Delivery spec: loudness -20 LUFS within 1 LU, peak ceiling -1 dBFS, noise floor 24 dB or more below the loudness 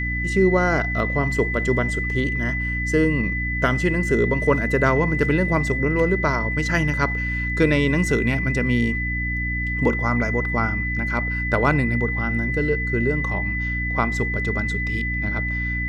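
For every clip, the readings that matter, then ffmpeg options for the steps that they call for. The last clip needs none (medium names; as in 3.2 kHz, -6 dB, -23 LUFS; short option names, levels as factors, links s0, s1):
hum 60 Hz; highest harmonic 300 Hz; hum level -24 dBFS; steady tone 2 kHz; tone level -25 dBFS; loudness -21.5 LUFS; peak level -6.0 dBFS; loudness target -20.0 LUFS
-> -af "bandreject=f=60:t=h:w=4,bandreject=f=120:t=h:w=4,bandreject=f=180:t=h:w=4,bandreject=f=240:t=h:w=4,bandreject=f=300:t=h:w=4"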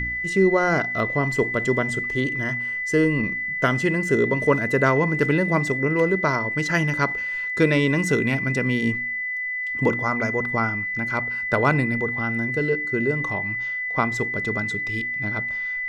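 hum not found; steady tone 2 kHz; tone level -25 dBFS
-> -af "bandreject=f=2000:w=30"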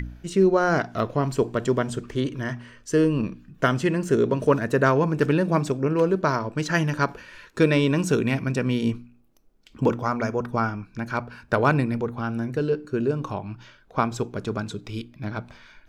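steady tone not found; loudness -24.5 LUFS; peak level -7.5 dBFS; loudness target -20.0 LUFS
-> -af "volume=1.68"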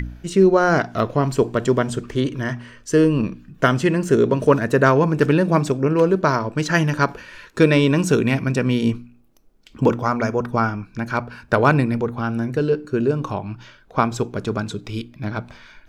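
loudness -20.0 LUFS; peak level -2.5 dBFS; noise floor -51 dBFS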